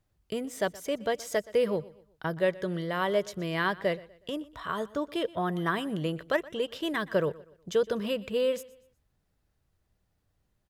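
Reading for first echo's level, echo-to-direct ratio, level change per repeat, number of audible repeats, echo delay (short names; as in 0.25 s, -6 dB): -20.5 dB, -20.0 dB, -8.5 dB, 2, 0.122 s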